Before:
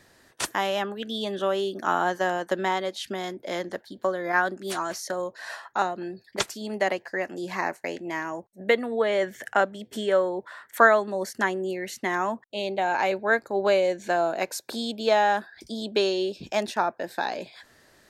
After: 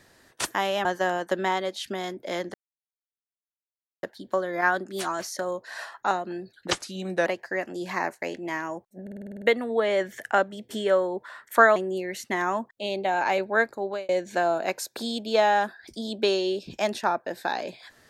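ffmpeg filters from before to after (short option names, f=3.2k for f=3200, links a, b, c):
-filter_complex "[0:a]asplit=15[a][b][c][d][e][f][g][h][i][j][k][l][m][n][o];[a]atrim=end=0.852[p];[b]atrim=start=2.048:end=3.74,asetpts=PTS-STARTPTS,afade=t=out:st=1.688:d=0.004:c=hsin,apad=pad_dur=1.49[q];[c]atrim=start=3.74:end=6.234,asetpts=PTS-STARTPTS,afade=t=in:d=0.004:c=hsin[r];[d]atrim=start=6.23:end=6.88,asetpts=PTS-STARTPTS,asetrate=38808,aresample=44100[s];[e]atrim=start=6.876:end=8.692[t];[f]atrim=start=8.638:end=8.692[u];[g]atrim=start=8.638:end=8.692[v];[h]atrim=start=8.638:end=8.692[w];[i]atrim=start=8.638:end=8.692[x];[j]atrim=start=8.638:end=8.692[y];[k]atrim=start=8.638:end=8.692[z];[l]atrim=start=8.638:end=8.692[aa];[m]atrim=start=8.638:end=10.982[ab];[n]atrim=start=11.488:end=13.82,asetpts=PTS-STARTPTS,afade=t=out:st=1.932:d=0.4[ac];[o]atrim=start=13.82,asetpts=PTS-STARTPTS,afade=t=in:d=0.004:c=hsin[ad];[q][r]concat=n=2:v=0:a=1[ae];[p][ae]acrossfade=d=0.004:c1=hsin:c2=hsin[af];[af][s]acrossfade=d=0.004:c1=hsin:c2=hsin[ag];[ag][t]acrossfade=d=0.004:c1=hsin:c2=hsin[ah];[ah][u]acrossfade=d=0.004:c1=hsin:c2=hsin[ai];[ai][v]acrossfade=d=0.004:c1=hsin:c2=hsin[aj];[aj][w]acrossfade=d=0.004:c1=hsin:c2=hsin[ak];[ak][x]acrossfade=d=0.004:c1=hsin:c2=hsin[al];[al][y]acrossfade=d=0.004:c1=hsin:c2=hsin[am];[am][z]acrossfade=d=0.004:c1=hsin:c2=hsin[an];[an][aa]acrossfade=d=0.004:c1=hsin:c2=hsin[ao];[ao][ab]acrossfade=d=0.004:c1=hsin:c2=hsin[ap];[ac][ad]concat=n=2:v=0:a=1[aq];[ap][aq]acrossfade=d=0.004:c1=hsin:c2=hsin"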